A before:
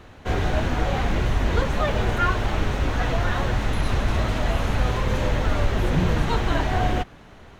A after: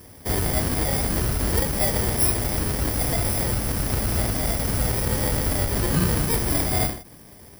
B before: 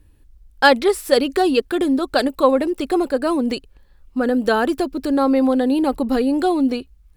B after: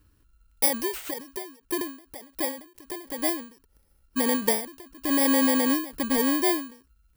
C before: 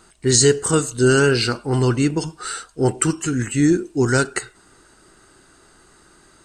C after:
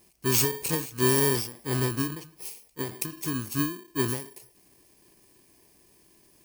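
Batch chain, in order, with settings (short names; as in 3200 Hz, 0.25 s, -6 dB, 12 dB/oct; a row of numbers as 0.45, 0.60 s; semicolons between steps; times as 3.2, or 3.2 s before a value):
FFT order left unsorted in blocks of 32 samples; HPF 72 Hz 6 dB/oct; ending taper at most 120 dB/s; normalise peaks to -9 dBFS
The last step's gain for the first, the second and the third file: +1.5, -4.5, -7.5 dB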